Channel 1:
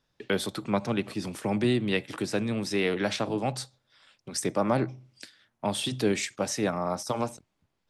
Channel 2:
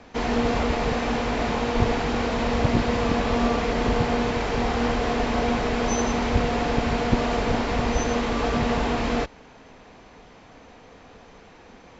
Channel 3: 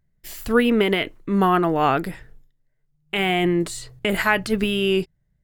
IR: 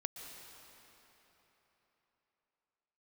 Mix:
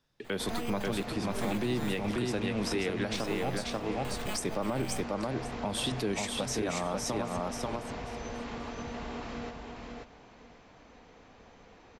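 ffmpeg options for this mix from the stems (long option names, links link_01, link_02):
-filter_complex "[0:a]volume=-1dB,asplit=2[link_01][link_02];[link_02]volume=-3.5dB[link_03];[1:a]acompressor=threshold=-28dB:ratio=6,adelay=250,volume=-9dB,asplit=2[link_04][link_05];[link_05]volume=-3.5dB[link_06];[2:a]acrusher=samples=8:mix=1:aa=0.000001,aeval=exprs='abs(val(0))':channel_layout=same,volume=-16.5dB[link_07];[link_03][link_06]amix=inputs=2:normalize=0,aecho=0:1:537|1074|1611:1|0.17|0.0289[link_08];[link_01][link_04][link_07][link_08]amix=inputs=4:normalize=0,alimiter=limit=-22dB:level=0:latency=1:release=139"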